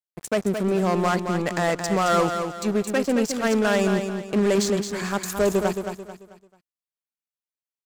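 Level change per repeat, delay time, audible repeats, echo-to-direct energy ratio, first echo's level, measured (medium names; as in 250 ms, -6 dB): -9.0 dB, 220 ms, 4, -6.5 dB, -7.0 dB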